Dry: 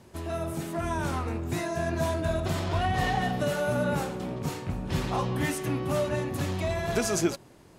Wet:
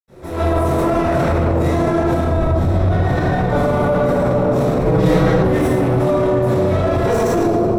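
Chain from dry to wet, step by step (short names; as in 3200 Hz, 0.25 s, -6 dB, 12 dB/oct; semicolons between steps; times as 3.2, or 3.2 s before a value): minimum comb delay 0.53 ms; 2.05–2.76 low shelf 200 Hz +11.5 dB; reverb RT60 2.7 s, pre-delay 76 ms; AGC gain up to 11.5 dB; bell 560 Hz +12 dB 2.2 oct; limiter -8.5 dBFS, peak gain reduction 14 dB; 4.85–5.43 comb 6.3 ms, depth 89%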